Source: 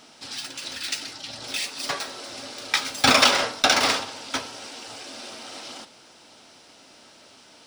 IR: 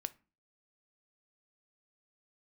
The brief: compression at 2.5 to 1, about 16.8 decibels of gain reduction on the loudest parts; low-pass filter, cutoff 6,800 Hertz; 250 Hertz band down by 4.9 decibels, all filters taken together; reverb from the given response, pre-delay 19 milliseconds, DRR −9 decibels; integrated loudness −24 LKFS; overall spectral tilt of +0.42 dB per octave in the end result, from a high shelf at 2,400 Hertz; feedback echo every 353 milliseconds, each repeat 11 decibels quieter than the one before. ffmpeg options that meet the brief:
-filter_complex "[0:a]lowpass=6800,equalizer=frequency=250:width_type=o:gain=-5.5,highshelf=frequency=2400:gain=6.5,acompressor=threshold=-37dB:ratio=2.5,aecho=1:1:353|706|1059:0.282|0.0789|0.0221,asplit=2[link_01][link_02];[1:a]atrim=start_sample=2205,adelay=19[link_03];[link_02][link_03]afir=irnorm=-1:irlink=0,volume=11dB[link_04];[link_01][link_04]amix=inputs=2:normalize=0,volume=0.5dB"

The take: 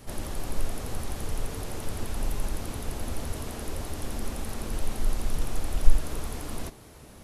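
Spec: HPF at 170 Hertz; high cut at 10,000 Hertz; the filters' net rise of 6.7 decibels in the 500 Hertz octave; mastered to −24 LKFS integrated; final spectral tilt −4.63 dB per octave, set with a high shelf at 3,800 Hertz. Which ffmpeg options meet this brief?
ffmpeg -i in.wav -af "highpass=170,lowpass=10000,equalizer=frequency=500:width_type=o:gain=8.5,highshelf=frequency=3800:gain=-4.5,volume=12.5dB" out.wav

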